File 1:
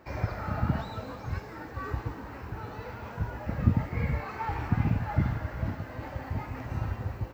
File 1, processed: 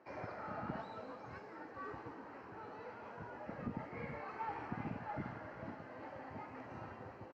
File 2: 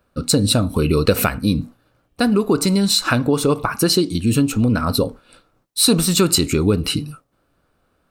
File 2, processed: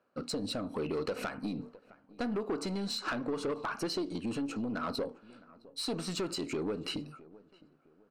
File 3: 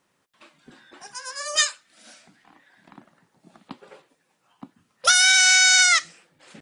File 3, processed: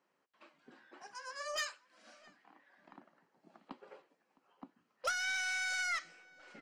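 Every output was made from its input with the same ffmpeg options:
-filter_complex "[0:a]acompressor=threshold=-17dB:ratio=6,highpass=190,lowpass=5.3k,highshelf=f=2.8k:g=-11.5,aeval=exprs='0.501*(cos(1*acos(clip(val(0)/0.501,-1,1)))-cos(1*PI/2))+0.0794*(cos(4*acos(clip(val(0)/0.501,-1,1)))-cos(4*PI/2))':c=same,bass=f=250:g=-6,treble=f=4k:g=5,bandreject=f=3.6k:w=10,asplit=2[a][b];[b]adelay=661,lowpass=f=1.7k:p=1,volume=-23dB,asplit=2[c][d];[d]adelay=661,lowpass=f=1.7k:p=1,volume=0.34[e];[a][c][e]amix=inputs=3:normalize=0,asoftclip=type=tanh:threshold=-20.5dB,volume=-6.5dB"

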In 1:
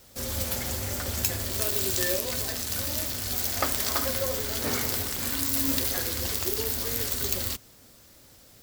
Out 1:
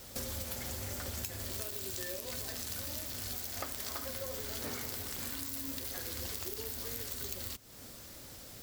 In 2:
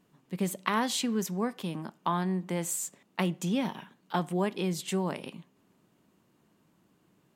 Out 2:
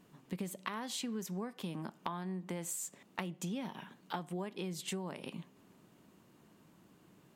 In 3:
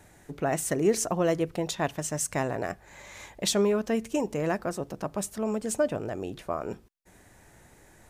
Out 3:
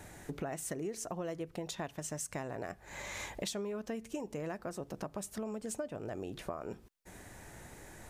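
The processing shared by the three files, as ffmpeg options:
-af "acompressor=threshold=-41dB:ratio=8,volume=4dB"

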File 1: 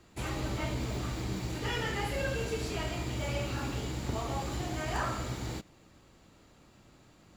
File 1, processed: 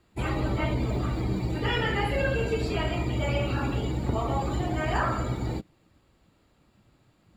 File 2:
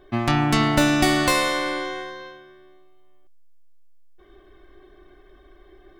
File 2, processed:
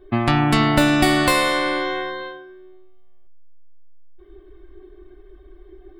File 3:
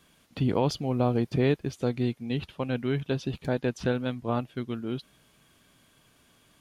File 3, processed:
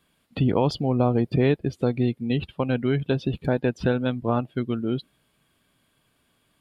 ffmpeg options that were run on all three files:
-filter_complex "[0:a]afftdn=nr=13:nf=-43,equalizer=f=6.1k:t=o:w=0.33:g=-10,asplit=2[a][b];[b]acompressor=threshold=-29dB:ratio=6,volume=3dB[c];[a][c]amix=inputs=2:normalize=0"

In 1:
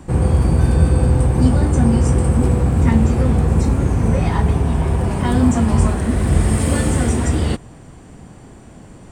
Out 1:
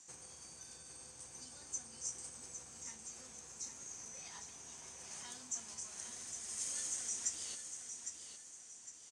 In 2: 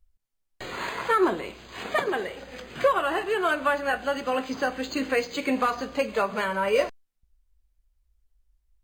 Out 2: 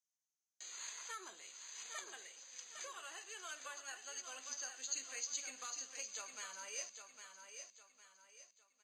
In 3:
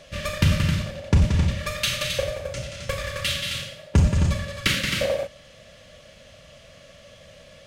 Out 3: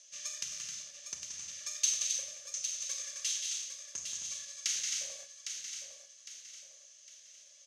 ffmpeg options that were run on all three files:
-filter_complex "[0:a]acompressor=threshold=-18dB:ratio=6,bandpass=f=6.3k:t=q:w=8.9:csg=0,asplit=2[a][b];[b]aecho=0:1:807|1614|2421|3228:0.422|0.16|0.0609|0.0231[c];[a][c]amix=inputs=2:normalize=0,volume=8dB"

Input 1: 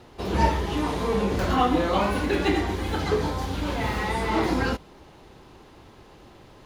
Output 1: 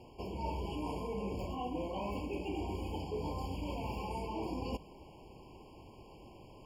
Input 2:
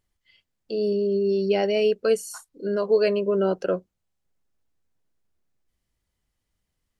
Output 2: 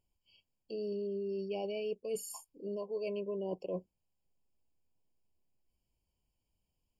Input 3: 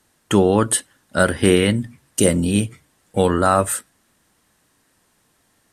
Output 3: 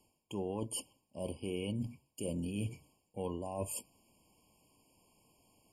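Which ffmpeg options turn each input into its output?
-af "areverse,acompressor=threshold=-30dB:ratio=10,areverse,afftfilt=real='re*eq(mod(floor(b*sr/1024/1100),2),0)':imag='im*eq(mod(floor(b*sr/1024/1100),2),0)':win_size=1024:overlap=0.75,volume=-4.5dB"

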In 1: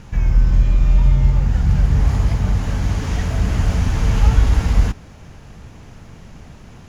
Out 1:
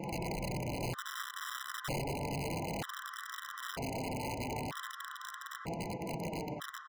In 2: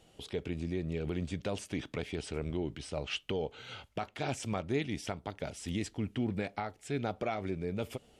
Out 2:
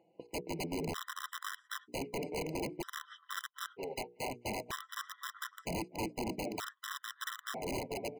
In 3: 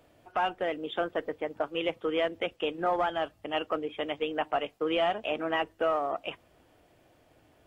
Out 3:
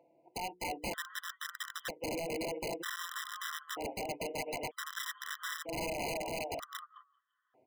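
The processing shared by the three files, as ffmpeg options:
-filter_complex "[0:a]asplit=2[a][b];[b]aecho=0:1:250|475|677.5|859.8|1024:0.631|0.398|0.251|0.158|0.1[c];[a][c]amix=inputs=2:normalize=0,acompressor=mode=upward:threshold=-20dB:ratio=2.5,agate=range=-36dB:threshold=-28dB:ratio=16:detection=peak,highpass=260,flanger=delay=5.9:depth=2.1:regen=30:speed=0.34:shape=sinusoidal,aemphasis=mode=production:type=50fm,acompressor=threshold=-44dB:ratio=12,lowpass=1.2k,bandreject=f=60:t=h:w=6,bandreject=f=120:t=h:w=6,bandreject=f=180:t=h:w=6,bandreject=f=240:t=h:w=6,bandreject=f=300:t=h:w=6,bandreject=f=360:t=h:w=6,bandreject=f=420:t=h:w=6,bandreject=f=480:t=h:w=6,aeval=exprs='(mod(141*val(0)+1,2)-1)/141':c=same,afftfilt=real='re*gt(sin(2*PI*0.53*pts/sr)*(1-2*mod(floor(b*sr/1024/1000),2)),0)':imag='im*gt(sin(2*PI*0.53*pts/sr)*(1-2*mod(floor(b*sr/1024/1000),2)),0)':win_size=1024:overlap=0.75,volume=13.5dB"

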